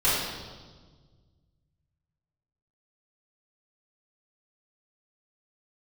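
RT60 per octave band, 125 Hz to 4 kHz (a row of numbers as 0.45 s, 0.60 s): 2.7 s, 2.0 s, 1.6 s, 1.4 s, 1.1 s, 1.3 s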